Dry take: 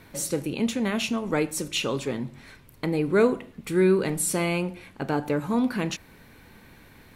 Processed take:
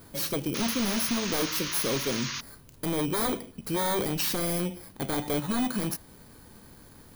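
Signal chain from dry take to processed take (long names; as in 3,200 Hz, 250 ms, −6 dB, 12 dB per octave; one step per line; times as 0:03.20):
samples in bit-reversed order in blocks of 16 samples
wave folding −22 dBFS
sound drawn into the spectrogram noise, 0:00.54–0:02.41, 920–6,800 Hz −35 dBFS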